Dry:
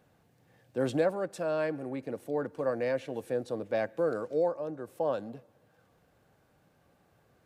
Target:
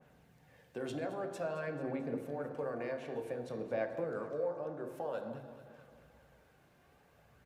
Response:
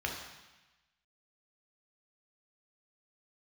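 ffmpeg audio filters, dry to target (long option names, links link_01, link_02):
-filter_complex "[0:a]alimiter=limit=-24dB:level=0:latency=1,acompressor=threshold=-39dB:ratio=2,aphaser=in_gain=1:out_gain=1:delay=2.9:decay=0.34:speed=0.52:type=sinusoidal,aecho=1:1:220|440|660|880|1100|1320:0.188|0.113|0.0678|0.0407|0.0244|0.0146,asplit=2[link_01][link_02];[1:a]atrim=start_sample=2205[link_03];[link_02][link_03]afir=irnorm=-1:irlink=0,volume=-4.5dB[link_04];[link_01][link_04]amix=inputs=2:normalize=0,adynamicequalizer=threshold=0.00355:dfrequency=1600:dqfactor=0.7:tfrequency=1600:tqfactor=0.7:attack=5:release=100:ratio=0.375:range=3:mode=cutabove:tftype=highshelf,volume=-3dB"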